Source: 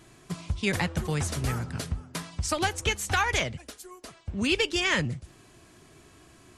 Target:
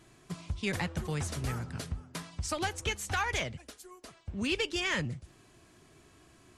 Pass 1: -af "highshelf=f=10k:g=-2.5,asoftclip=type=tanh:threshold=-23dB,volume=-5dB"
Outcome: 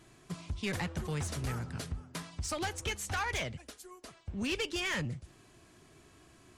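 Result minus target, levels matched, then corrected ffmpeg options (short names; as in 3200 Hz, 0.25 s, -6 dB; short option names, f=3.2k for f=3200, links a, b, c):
soft clip: distortion +10 dB
-af "highshelf=f=10k:g=-2.5,asoftclip=type=tanh:threshold=-14.5dB,volume=-5dB"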